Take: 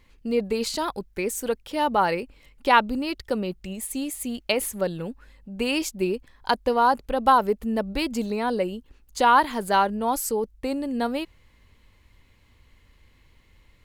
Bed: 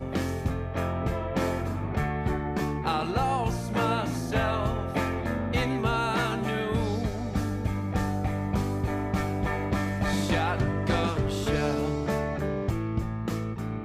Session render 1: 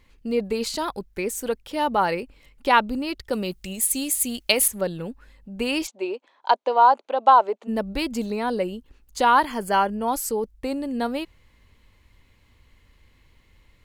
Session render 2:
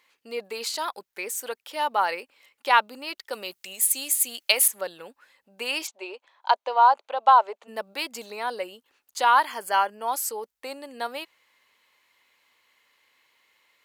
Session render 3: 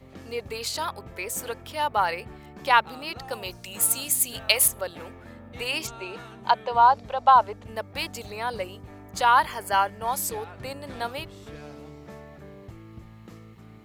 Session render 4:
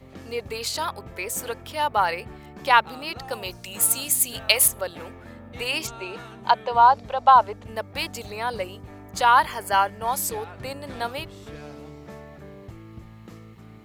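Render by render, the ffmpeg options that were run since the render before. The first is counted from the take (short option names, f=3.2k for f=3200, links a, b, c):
-filter_complex "[0:a]asettb=1/sr,asplit=3[a][b][c];[a]atrim=end=3.334[d];[b]atrim=start=3.33:end=4.68,asetpts=PTS-STARTPTS,afade=t=in:d=0.004:c=qsin,afade=t=out:st=1.346:d=0.004:c=qsin,highshelf=f=3k:g=12[e];[c]atrim=start=4.676[f];[d][e]acrossfade=d=0.004:c1=hsin:c2=qsin[g];[g][f]acrossfade=d=0.004:c1=qsin:c2=hsin,asplit=3[h][i][j];[h]afade=t=out:st=5.86:d=0.02[k];[i]highpass=f=350:w=0.5412,highpass=f=350:w=1.3066,equalizer=f=440:t=q:w=4:g=-3,equalizer=f=640:t=q:w=4:g=6,equalizer=f=920:t=q:w=4:g=6,equalizer=f=1.8k:t=q:w=4:g=-5,equalizer=f=5.1k:t=q:w=4:g=-9,lowpass=f=6.2k:w=0.5412,lowpass=f=6.2k:w=1.3066,afade=t=in:st=5.86:d=0.02,afade=t=out:st=7.67:d=0.02[l];[j]afade=t=in:st=7.67:d=0.02[m];[k][l][m]amix=inputs=3:normalize=0,asettb=1/sr,asplit=3[n][o][p];[n]atrim=end=9.454[q];[o]atrim=start=9.45:end=10.08,asetpts=PTS-STARTPTS,afade=t=in:d=0.004:c=qsin,afade=t=out:st=0.626:d=0.004:c=qsin,asuperstop=centerf=3800:order=12:qfactor=5.2[r];[p]atrim=start=10.076[s];[q][r]acrossfade=d=0.004:c1=hsin:c2=qsin[t];[t][s]acrossfade=d=0.004:c1=qsin:c2=hsin"
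-af "highpass=730,equalizer=f=14k:w=3.9:g=5"
-filter_complex "[1:a]volume=-15.5dB[a];[0:a][a]amix=inputs=2:normalize=0"
-af "volume=2dB"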